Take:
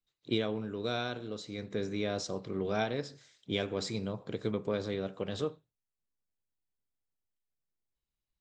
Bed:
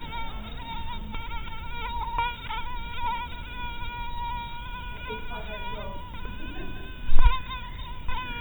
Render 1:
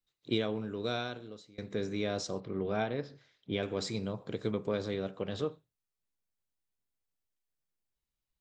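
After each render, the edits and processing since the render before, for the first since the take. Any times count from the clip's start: 0.91–1.58 fade out, to -23 dB; 2.4–3.63 air absorption 220 m; 5.11–5.51 air absorption 60 m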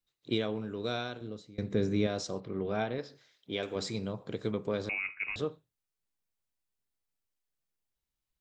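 1.21–2.07 low shelf 380 Hz +9.5 dB; 2.98–3.76 tone controls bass -8 dB, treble +7 dB; 4.89–5.36 inverted band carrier 2700 Hz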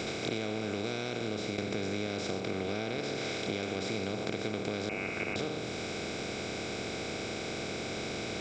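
per-bin compression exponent 0.2; compressor, threshold -31 dBFS, peak gain reduction 11.5 dB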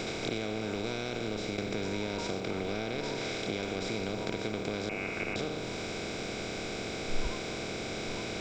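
add bed -18.5 dB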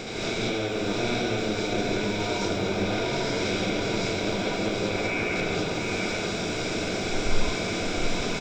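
echo 0.719 s -5 dB; non-linear reverb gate 0.24 s rising, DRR -6 dB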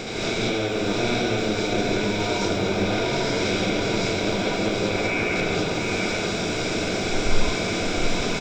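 gain +3.5 dB

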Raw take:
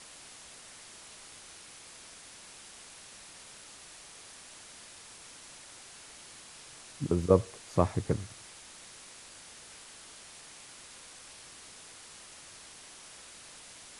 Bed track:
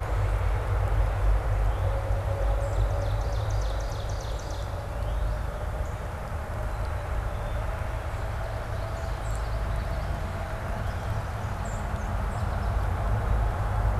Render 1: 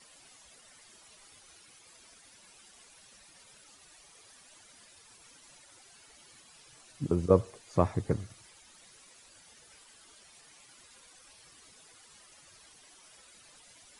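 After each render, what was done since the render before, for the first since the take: denoiser 12 dB, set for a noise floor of -51 dBFS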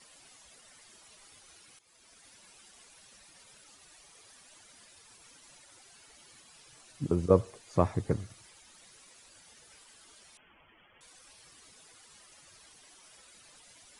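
1.79–2.26 fade in, from -13 dB; 10.37–11.01 inverted band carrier 3300 Hz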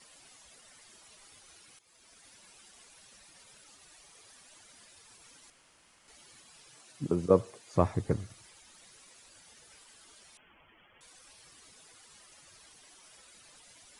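5.5–6.08 room tone; 6.68–7.74 HPF 130 Hz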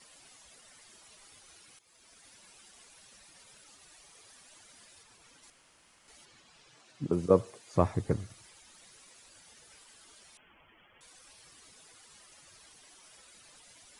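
5.03–5.43 high shelf 5100 Hz -6.5 dB; 6.25–7.13 air absorption 77 m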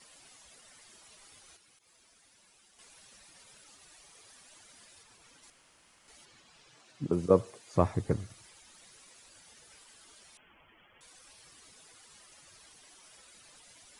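1.56–2.79 compressor, threshold -60 dBFS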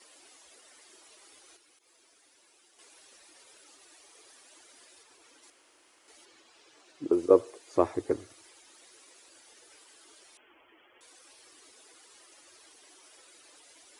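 HPF 46 Hz; resonant low shelf 240 Hz -11 dB, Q 3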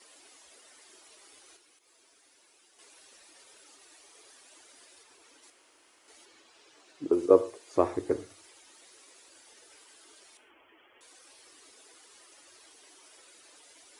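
non-linear reverb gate 0.16 s falling, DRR 10.5 dB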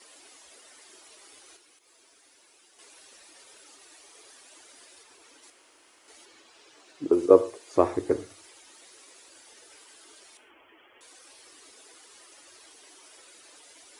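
gain +3.5 dB

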